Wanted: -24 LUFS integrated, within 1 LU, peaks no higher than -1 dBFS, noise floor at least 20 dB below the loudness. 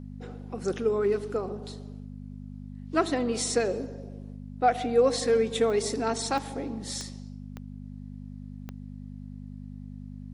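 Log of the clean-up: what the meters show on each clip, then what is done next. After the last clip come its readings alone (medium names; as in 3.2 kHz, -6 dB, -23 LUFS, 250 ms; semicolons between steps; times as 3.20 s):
clicks found 5; hum 50 Hz; highest harmonic 250 Hz; hum level -38 dBFS; loudness -28.0 LUFS; peak level -10.0 dBFS; loudness target -24.0 LUFS
-> de-click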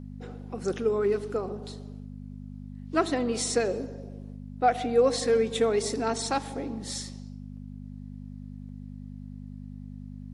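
clicks found 0; hum 50 Hz; highest harmonic 250 Hz; hum level -38 dBFS
-> de-hum 50 Hz, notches 5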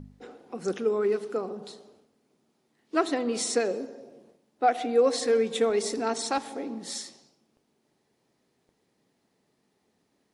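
hum not found; loudness -27.5 LUFS; peak level -10.0 dBFS; loudness target -24.0 LUFS
-> trim +3.5 dB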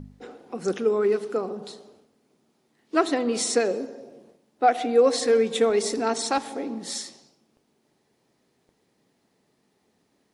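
loudness -24.0 LUFS; peak level -6.5 dBFS; noise floor -70 dBFS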